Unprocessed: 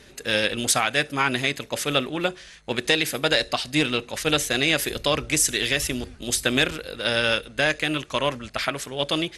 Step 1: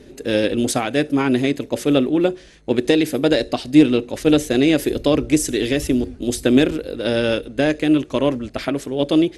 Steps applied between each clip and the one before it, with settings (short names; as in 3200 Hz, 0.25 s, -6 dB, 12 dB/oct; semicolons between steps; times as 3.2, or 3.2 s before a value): EQ curve 200 Hz 0 dB, 280 Hz +9 dB, 1200 Hz -10 dB; gain +6 dB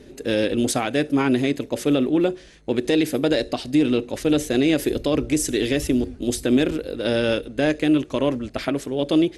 limiter -8 dBFS, peak gain reduction 6.5 dB; gain -1.5 dB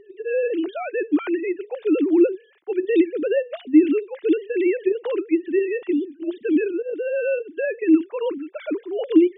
sine-wave speech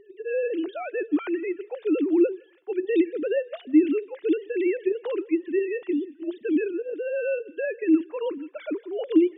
thinning echo 0.162 s, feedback 60%, high-pass 800 Hz, level -24 dB; gain -4 dB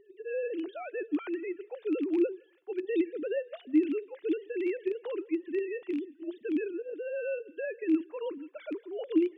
rattling part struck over -32 dBFS, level -29 dBFS; gain -7 dB